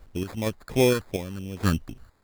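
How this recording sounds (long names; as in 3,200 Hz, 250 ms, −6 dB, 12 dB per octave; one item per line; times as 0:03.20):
sample-and-hold tremolo 4.3 Hz, depth 90%
a quantiser's noise floor 12 bits, dither triangular
phaser sweep stages 6, 2.8 Hz, lowest notch 720–1,800 Hz
aliases and images of a low sample rate 2,900 Hz, jitter 0%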